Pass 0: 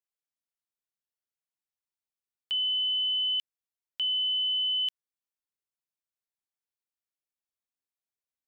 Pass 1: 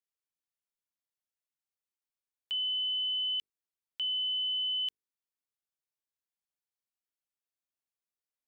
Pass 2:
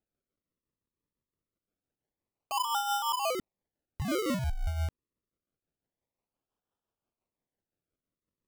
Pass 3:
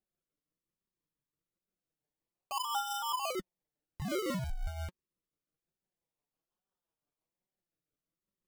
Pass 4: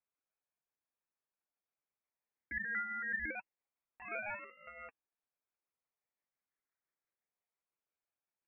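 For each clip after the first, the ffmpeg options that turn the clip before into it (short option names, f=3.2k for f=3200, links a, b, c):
-af "bandreject=f=50:t=h:w=6,bandreject=f=100:t=h:w=6,bandreject=f=150:t=h:w=6,bandreject=f=200:t=h:w=6,bandreject=f=250:t=h:w=6,bandreject=f=300:t=h:w=6,bandreject=f=350:t=h:w=6,bandreject=f=400:t=h:w=6,bandreject=f=450:t=h:w=6,volume=-4dB"
-af "tremolo=f=5.8:d=0.48,acrusher=samples=40:mix=1:aa=0.000001:lfo=1:lforange=40:lforate=0.26,volume=3.5dB"
-af "flanger=delay=5.1:depth=1.8:regen=31:speed=1.2:shape=triangular"
-af "aderivative,lowpass=f=2.4k:t=q:w=0.5098,lowpass=f=2.4k:t=q:w=0.6013,lowpass=f=2.4k:t=q:w=0.9,lowpass=f=2.4k:t=q:w=2.563,afreqshift=-2800,volume=14dB"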